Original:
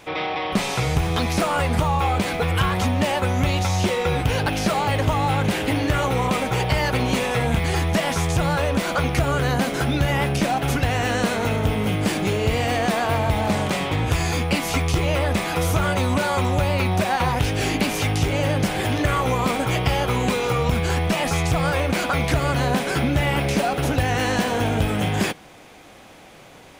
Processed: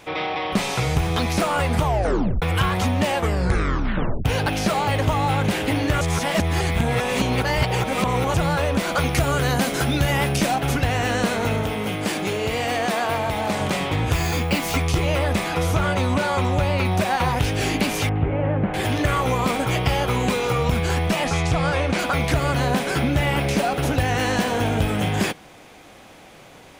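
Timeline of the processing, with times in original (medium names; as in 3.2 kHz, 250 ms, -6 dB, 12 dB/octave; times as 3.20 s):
1.82 s: tape stop 0.60 s
3.11 s: tape stop 1.14 s
6.01–8.34 s: reverse
8.95–10.56 s: treble shelf 4.3 kHz +6.5 dB
11.63–13.61 s: bass shelf 160 Hz -11 dB
14.13–14.77 s: careless resampling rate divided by 2×, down none, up hold
15.48–16.85 s: treble shelf 9.3 kHz -9 dB
18.09–18.74 s: Gaussian low-pass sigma 4.5 samples
21.24–21.99 s: low-pass 7.8 kHz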